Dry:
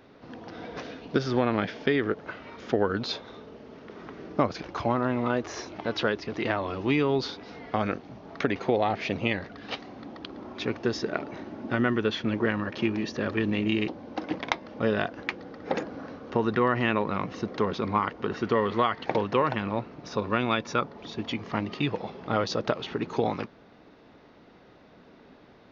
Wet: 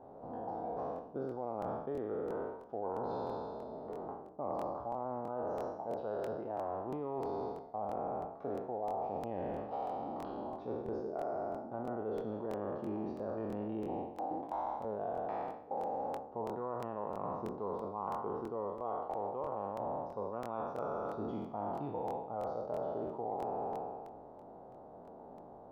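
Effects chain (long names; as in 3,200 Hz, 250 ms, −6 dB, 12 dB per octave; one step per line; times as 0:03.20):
peak hold with a decay on every bin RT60 1.66 s
drawn EQ curve 310 Hz 0 dB, 800 Hz +12 dB, 2,100 Hz −25 dB
reversed playback
downward compressor 10 to 1, threshold −29 dBFS, peak gain reduction 19 dB
reversed playback
regular buffer underruns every 0.33 s, samples 1,024, repeat, from 0:00.94
level −6 dB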